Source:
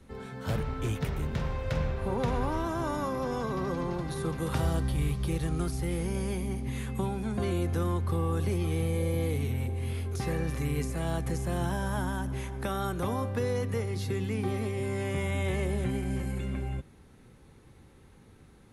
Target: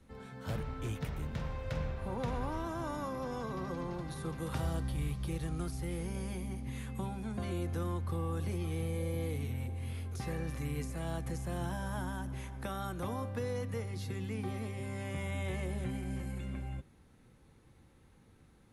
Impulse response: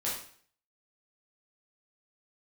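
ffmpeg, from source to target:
-af "bandreject=frequency=400:width=12,volume=-6.5dB"

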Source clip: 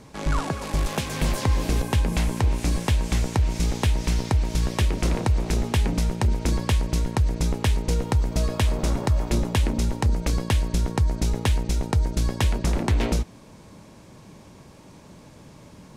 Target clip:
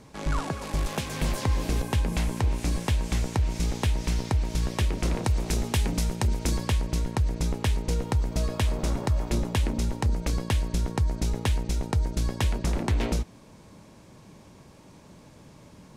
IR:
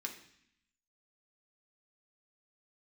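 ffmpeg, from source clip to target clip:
-filter_complex "[0:a]asettb=1/sr,asplit=3[link_01][link_02][link_03];[link_01]atrim=end=5.244[link_04];[link_02]atrim=start=5.24:end=6.69,asetpts=PTS-STARTPTS,afade=type=in:duration=0.004:curve=qsin,afade=type=out:start_time=1.446:duration=0.004:curve=qsin,highshelf=frequency=4200:gain=7[link_05];[link_03]atrim=start=6.686[link_06];[link_04][link_05]acrossfade=duration=0.004:curve1=hsin:curve2=qsin[link_07];[link_07][link_06]acrossfade=duration=0.004:curve1=qsin:curve2=hsin,volume=-3.5dB"

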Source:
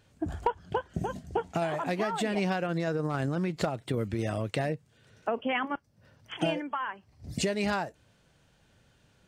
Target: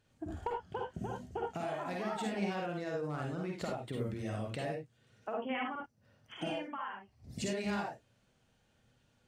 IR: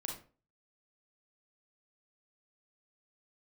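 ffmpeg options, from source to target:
-filter_complex "[1:a]atrim=start_sample=2205,atrim=end_sample=3528,asetrate=33075,aresample=44100[link_01];[0:a][link_01]afir=irnorm=-1:irlink=0,volume=-8.5dB"

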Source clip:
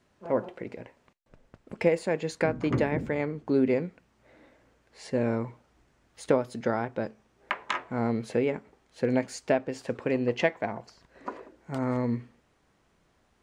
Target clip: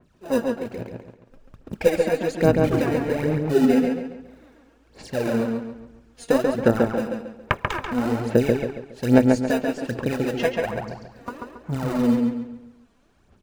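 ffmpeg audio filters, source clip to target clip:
ffmpeg -i in.wav -filter_complex "[0:a]bandreject=frequency=2000:width=9.8,asplit=2[link_01][link_02];[link_02]acrusher=samples=40:mix=1:aa=0.000001,volume=-7.5dB[link_03];[link_01][link_03]amix=inputs=2:normalize=0,aphaser=in_gain=1:out_gain=1:delay=4.3:decay=0.71:speed=1.2:type=sinusoidal,asplit=2[link_04][link_05];[link_05]adelay=138,lowpass=frequency=4100:poles=1,volume=-3dB,asplit=2[link_06][link_07];[link_07]adelay=138,lowpass=frequency=4100:poles=1,volume=0.39,asplit=2[link_08][link_09];[link_09]adelay=138,lowpass=frequency=4100:poles=1,volume=0.39,asplit=2[link_10][link_11];[link_11]adelay=138,lowpass=frequency=4100:poles=1,volume=0.39,asplit=2[link_12][link_13];[link_13]adelay=138,lowpass=frequency=4100:poles=1,volume=0.39[link_14];[link_04][link_06][link_08][link_10][link_12][link_14]amix=inputs=6:normalize=0,adynamicequalizer=threshold=0.0141:dfrequency=2900:dqfactor=0.7:tfrequency=2900:tqfactor=0.7:attack=5:release=100:ratio=0.375:range=1.5:mode=cutabove:tftype=highshelf,volume=-1dB" out.wav

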